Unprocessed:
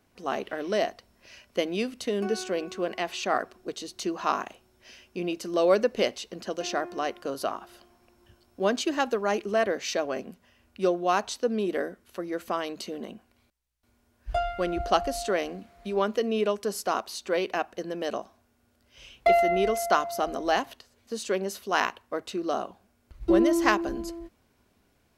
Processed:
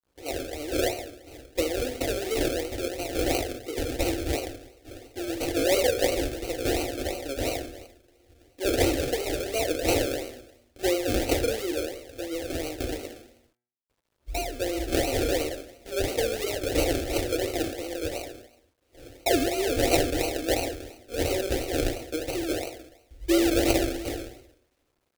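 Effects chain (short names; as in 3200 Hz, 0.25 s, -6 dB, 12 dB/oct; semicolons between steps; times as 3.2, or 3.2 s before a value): spectral trails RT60 0.81 s; expander -56 dBFS; band shelf 7500 Hz +15.5 dB; decimation with a swept rate 36×, swing 60% 2.9 Hz; fixed phaser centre 430 Hz, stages 4; notch comb 210 Hz; requantised 12-bit, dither none; de-hum 121.3 Hz, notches 19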